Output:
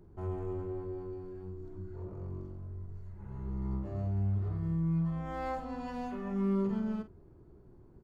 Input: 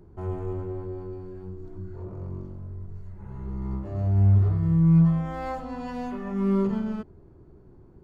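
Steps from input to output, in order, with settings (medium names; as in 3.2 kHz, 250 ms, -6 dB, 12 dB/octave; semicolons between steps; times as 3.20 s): compression 2:1, threshold -25 dBFS, peak gain reduction 6 dB; doubling 46 ms -12 dB; trim -5.5 dB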